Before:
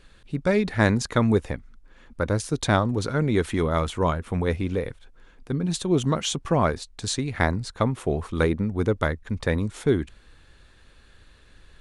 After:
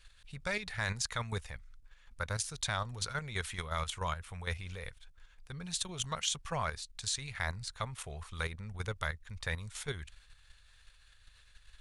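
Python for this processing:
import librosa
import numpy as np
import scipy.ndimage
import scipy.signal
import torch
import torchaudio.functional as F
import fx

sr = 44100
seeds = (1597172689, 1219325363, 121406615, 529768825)

y = fx.tone_stack(x, sr, knobs='10-0-10')
y = fx.level_steps(y, sr, step_db=9)
y = y * 10.0 ** (2.5 / 20.0)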